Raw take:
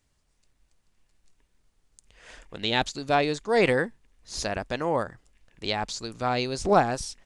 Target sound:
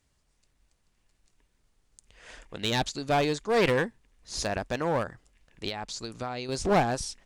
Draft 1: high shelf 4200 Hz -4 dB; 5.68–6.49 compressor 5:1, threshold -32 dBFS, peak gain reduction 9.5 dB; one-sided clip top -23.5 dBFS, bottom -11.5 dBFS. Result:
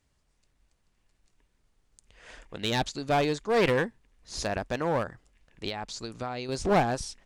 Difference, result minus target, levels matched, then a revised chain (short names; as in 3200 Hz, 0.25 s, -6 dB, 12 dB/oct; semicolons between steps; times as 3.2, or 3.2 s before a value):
8000 Hz band -2.5 dB
5.68–6.49 compressor 5:1, threshold -32 dBFS, peak gain reduction 10 dB; one-sided clip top -23.5 dBFS, bottom -11.5 dBFS